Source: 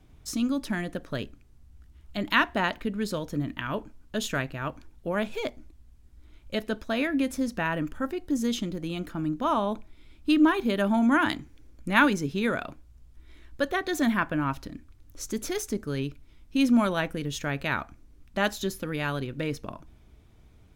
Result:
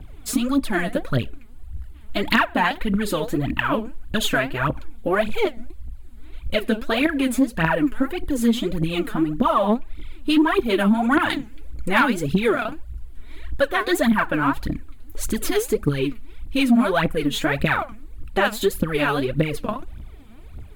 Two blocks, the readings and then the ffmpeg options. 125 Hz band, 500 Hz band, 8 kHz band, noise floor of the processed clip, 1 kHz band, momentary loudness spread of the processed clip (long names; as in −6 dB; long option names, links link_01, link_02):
+7.0 dB, +8.0 dB, +5.5 dB, −40 dBFS, +6.5 dB, 15 LU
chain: -af "aphaser=in_gain=1:out_gain=1:delay=4.9:decay=0.77:speed=1.7:type=triangular,aeval=exprs='0.841*sin(PI/2*1.78*val(0)/0.841)':channel_layout=same,equalizer=frequency=5700:width_type=o:width=0.49:gain=-13,acompressor=threshold=-18dB:ratio=2.5"